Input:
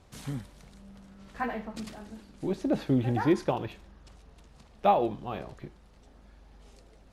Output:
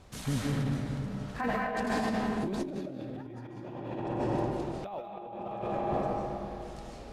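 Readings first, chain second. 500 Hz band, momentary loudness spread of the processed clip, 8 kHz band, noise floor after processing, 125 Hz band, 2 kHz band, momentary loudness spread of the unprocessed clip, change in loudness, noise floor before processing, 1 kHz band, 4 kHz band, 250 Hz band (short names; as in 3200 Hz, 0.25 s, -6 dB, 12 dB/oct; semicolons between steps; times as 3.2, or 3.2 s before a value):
-2.0 dB, 11 LU, n/a, -44 dBFS, +1.0 dB, +3.0 dB, 20 LU, -4.0 dB, -57 dBFS, -2.5 dB, +1.5 dB, -1.5 dB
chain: digital reverb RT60 2.8 s, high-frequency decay 0.5×, pre-delay 0.11 s, DRR -6.5 dB; negative-ratio compressor -32 dBFS, ratio -1; gain -3 dB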